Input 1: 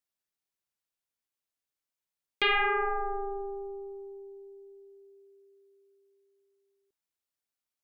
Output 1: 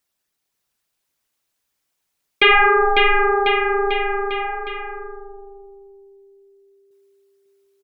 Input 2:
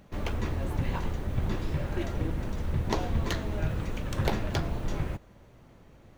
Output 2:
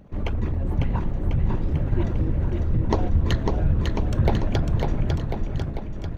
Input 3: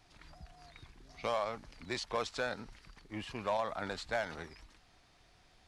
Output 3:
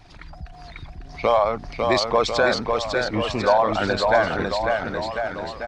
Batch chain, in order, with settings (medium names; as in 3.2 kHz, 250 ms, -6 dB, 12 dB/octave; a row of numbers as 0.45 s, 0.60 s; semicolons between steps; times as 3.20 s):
resonances exaggerated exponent 1.5; bouncing-ball echo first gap 550 ms, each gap 0.9×, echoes 5; peak normalisation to -6 dBFS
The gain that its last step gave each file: +13.0 dB, +6.0 dB, +16.0 dB